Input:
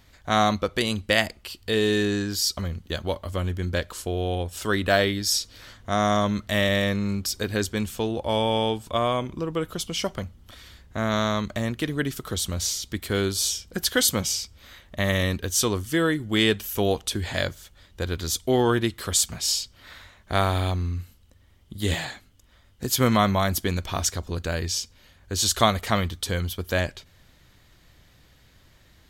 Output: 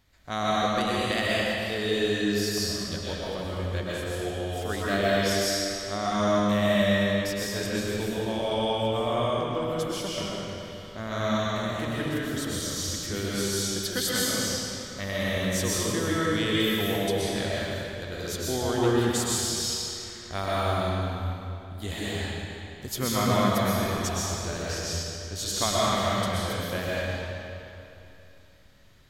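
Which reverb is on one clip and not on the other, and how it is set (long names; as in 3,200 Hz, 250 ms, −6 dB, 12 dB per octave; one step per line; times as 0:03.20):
comb and all-pass reverb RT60 2.9 s, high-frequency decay 0.85×, pre-delay 85 ms, DRR −7.5 dB
level −10 dB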